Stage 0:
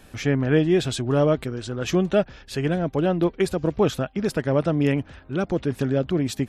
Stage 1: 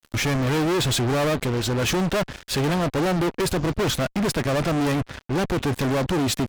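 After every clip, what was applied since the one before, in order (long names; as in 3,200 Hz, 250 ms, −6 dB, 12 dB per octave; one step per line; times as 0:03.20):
fuzz pedal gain 35 dB, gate −42 dBFS
level −7 dB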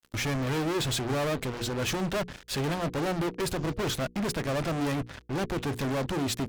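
mains-hum notches 60/120/180/240/300/360/420/480 Hz
level −6.5 dB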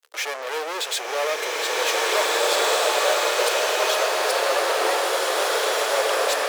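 elliptic high-pass filter 460 Hz, stop band 60 dB
slow-attack reverb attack 1,900 ms, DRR −7 dB
level +5.5 dB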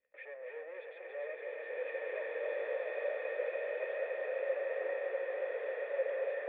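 bit-depth reduction 10 bits, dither triangular
formant resonators in series e
feedback echo with a high-pass in the loop 282 ms, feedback 77%, high-pass 420 Hz, level −5 dB
level −8.5 dB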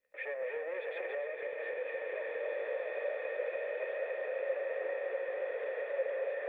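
camcorder AGC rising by 41 dB per second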